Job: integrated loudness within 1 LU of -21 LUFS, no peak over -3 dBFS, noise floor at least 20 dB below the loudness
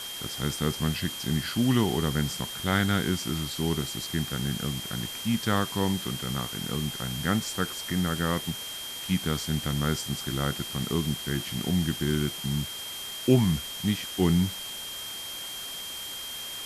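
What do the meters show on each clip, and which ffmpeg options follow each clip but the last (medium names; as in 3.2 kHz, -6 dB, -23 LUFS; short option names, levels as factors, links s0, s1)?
steady tone 3.2 kHz; tone level -37 dBFS; noise floor -38 dBFS; noise floor target -49 dBFS; loudness -28.5 LUFS; peak level -9.0 dBFS; loudness target -21.0 LUFS
-> -af "bandreject=f=3200:w=30"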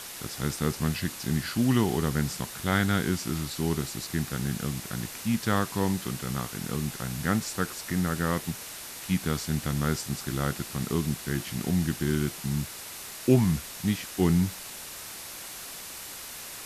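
steady tone not found; noise floor -41 dBFS; noise floor target -50 dBFS
-> -af "afftdn=nr=9:nf=-41"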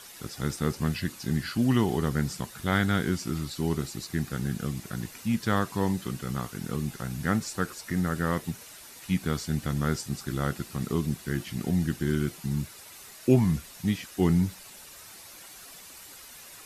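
noise floor -48 dBFS; noise floor target -49 dBFS
-> -af "afftdn=nr=6:nf=-48"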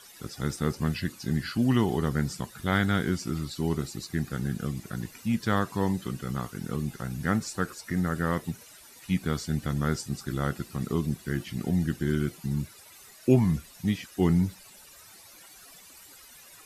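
noise floor -51 dBFS; loudness -29.5 LUFS; peak level -9.5 dBFS; loudness target -21.0 LUFS
-> -af "volume=2.66,alimiter=limit=0.708:level=0:latency=1"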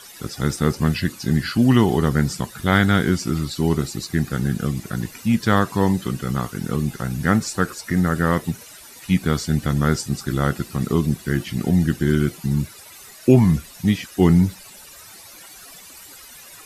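loudness -21.0 LUFS; peak level -3.0 dBFS; noise floor -43 dBFS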